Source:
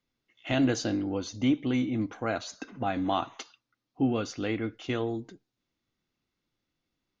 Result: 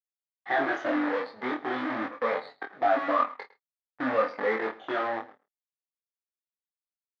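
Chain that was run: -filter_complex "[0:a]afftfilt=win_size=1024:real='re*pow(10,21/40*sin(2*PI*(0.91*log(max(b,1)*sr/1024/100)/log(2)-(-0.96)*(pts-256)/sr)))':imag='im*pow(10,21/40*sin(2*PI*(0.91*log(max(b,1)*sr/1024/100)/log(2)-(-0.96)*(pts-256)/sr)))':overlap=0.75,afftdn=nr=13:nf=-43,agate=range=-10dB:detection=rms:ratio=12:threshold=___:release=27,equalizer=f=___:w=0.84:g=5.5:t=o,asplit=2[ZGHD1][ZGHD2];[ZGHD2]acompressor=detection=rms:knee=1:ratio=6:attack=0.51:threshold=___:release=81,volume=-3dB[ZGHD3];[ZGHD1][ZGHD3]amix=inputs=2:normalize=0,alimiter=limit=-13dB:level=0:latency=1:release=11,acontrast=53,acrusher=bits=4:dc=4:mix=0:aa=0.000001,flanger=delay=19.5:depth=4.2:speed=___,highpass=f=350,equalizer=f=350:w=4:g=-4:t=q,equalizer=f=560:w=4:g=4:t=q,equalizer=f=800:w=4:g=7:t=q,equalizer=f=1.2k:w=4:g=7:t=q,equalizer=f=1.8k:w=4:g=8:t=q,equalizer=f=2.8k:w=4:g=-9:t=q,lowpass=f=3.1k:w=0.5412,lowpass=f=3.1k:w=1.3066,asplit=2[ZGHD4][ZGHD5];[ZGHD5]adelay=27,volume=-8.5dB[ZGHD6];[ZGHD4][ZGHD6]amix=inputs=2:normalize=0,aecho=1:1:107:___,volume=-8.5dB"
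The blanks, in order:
-46dB, 450, -33dB, 0.35, 0.106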